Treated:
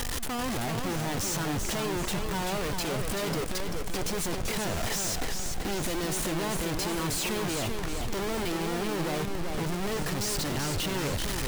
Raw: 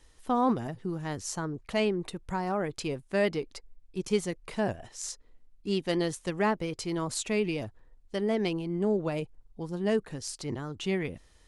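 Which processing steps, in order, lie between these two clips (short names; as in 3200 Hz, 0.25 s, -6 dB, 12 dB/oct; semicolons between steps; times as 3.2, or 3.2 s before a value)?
infinite clipping; pre-echo 0.299 s -15 dB; warbling echo 0.387 s, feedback 49%, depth 133 cents, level -5 dB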